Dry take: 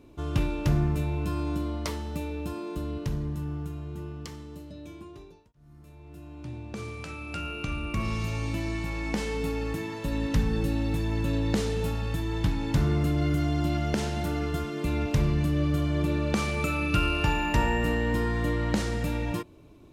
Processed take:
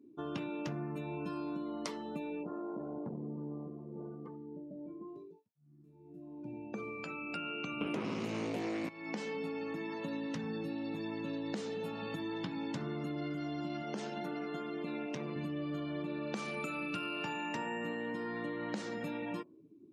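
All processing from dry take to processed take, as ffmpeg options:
-filter_complex "[0:a]asettb=1/sr,asplit=3[a][b][c];[a]atrim=end=2.434[d];[b]atrim=start=2.43:end=5.08,asetpts=PTS-STARTPTS,afade=t=in:d=0.004:c=qsin,afade=t=out:st=2.646:d=0.004:c=qsin,lowpass=1.6k,aeval=exprs='clip(val(0),-1,0.01)':c=same[e];[c]atrim=start=5.076[f];[d][e]acrossfade=d=0.004:c1=hsin:c2=qsin[g];[g][f]acrossfade=d=0.004:c1=qsin:c2=hsin,asettb=1/sr,asplit=3[h][i][j];[h]atrim=end=7.814[k];[i]atrim=start=7.81:end=8.89,asetpts=PTS-STARTPTS,afade=t=in:d=0.004:c=qsin,afade=t=out:st=1.076:d=0.004:c=qsin,lowshelf=f=360:g=10.5,aeval=exprs='0.316*sin(PI/2*3.16*val(0)/0.316)':c=same[l];[j]atrim=start=8.886[m];[k][l]acrossfade=d=0.004:c1=hsin:c2=qsin[n];[n][m]acrossfade=d=0.004:c1=qsin:c2=hsin,asettb=1/sr,asplit=3[o][p][q];[o]atrim=end=13.824[r];[p]atrim=start=13.82:end=15.36,asetpts=PTS-STARTPTS,afade=t=in:d=0.004:c=qsin,afade=t=out:st=1.536:d=0.004:c=qsin,highpass=150,aeval=exprs='(tanh(10*val(0)+0.55)-tanh(0.55))/10':c=same[s];[q]atrim=start=15.356[t];[r][s]acrossfade=d=0.004:c1=hsin:c2=qsin[u];[u][t]acrossfade=d=0.004:c1=qsin:c2=hsin,afftdn=nr=26:nf=-45,highpass=f=180:w=0.5412,highpass=f=180:w=1.3066,acompressor=threshold=-35dB:ratio=6,volume=-1dB"

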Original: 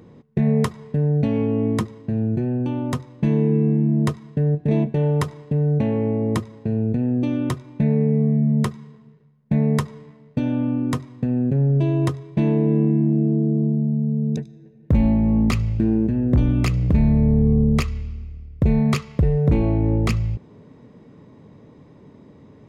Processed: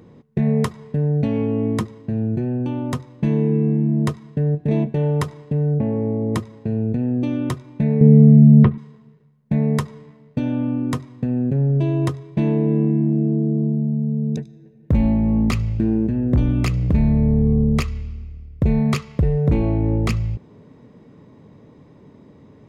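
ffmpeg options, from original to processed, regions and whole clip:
-filter_complex "[0:a]asettb=1/sr,asplit=3[a][b][c];[a]atrim=end=5.744[d];[b]atrim=start=5.74:end=6.34,asetpts=PTS-STARTPTS,afade=t=in:d=0.004:c=qsin,afade=t=out:st=0.596:d=0.004:c=qsin,lowpass=f=1.2k:p=1,aemphasis=mode=reproduction:type=75kf[e];[c]atrim=start=6.336[f];[d][e]acrossfade=d=0.004:c1=hsin:c2=qsin[g];[g][f]acrossfade=d=0.004:c1=qsin:c2=hsin,asettb=1/sr,asplit=3[h][i][j];[h]atrim=end=8.014[k];[i]atrim=start=8.01:end=8.78,asetpts=PTS-STARTPTS,afade=t=in:d=0.004:c=qsin,afade=t=out:st=0.766:d=0.004:c=qsin,lowpass=f=2.9k:w=0.5412,lowpass=f=2.9k:w=1.3066,lowshelf=f=410:g=11.5[l];[j]atrim=start=8.776[m];[k][l]acrossfade=d=0.004:c1=hsin:c2=qsin[n];[n][m]acrossfade=d=0.004:c1=qsin:c2=hsin"

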